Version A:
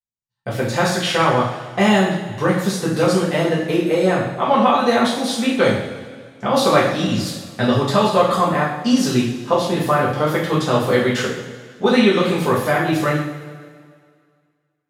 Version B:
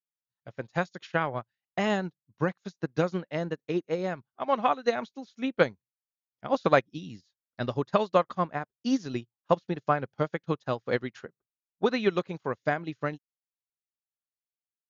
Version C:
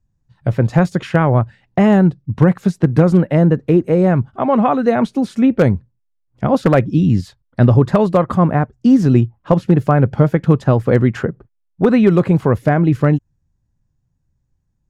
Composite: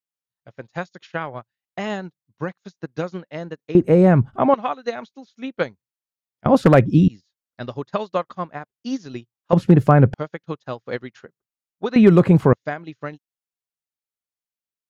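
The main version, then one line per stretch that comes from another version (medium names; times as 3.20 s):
B
3.75–4.54 s: from C
6.46–7.08 s: from C
9.53–10.14 s: from C
11.96–12.53 s: from C
not used: A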